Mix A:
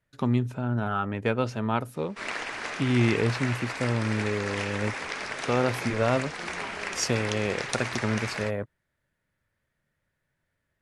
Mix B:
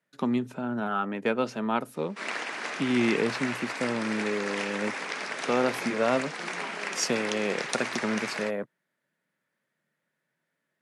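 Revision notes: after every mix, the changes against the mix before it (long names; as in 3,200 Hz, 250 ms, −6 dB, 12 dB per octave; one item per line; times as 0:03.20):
master: add Butterworth high-pass 160 Hz 36 dB per octave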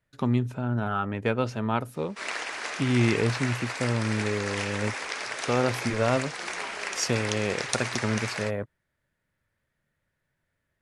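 background: add bass and treble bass −12 dB, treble +5 dB
master: remove Butterworth high-pass 160 Hz 36 dB per octave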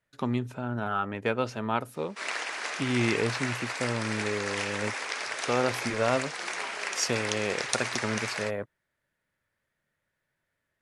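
master: add low-shelf EQ 200 Hz −9.5 dB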